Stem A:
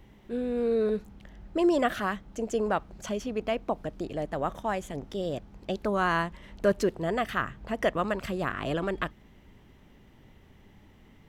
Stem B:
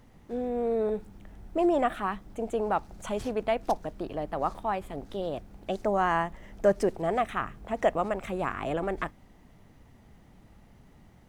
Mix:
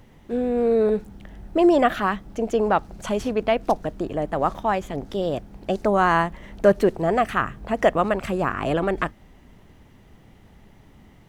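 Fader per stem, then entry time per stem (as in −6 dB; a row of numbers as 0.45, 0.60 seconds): +1.0, +2.5 decibels; 0.00, 0.00 seconds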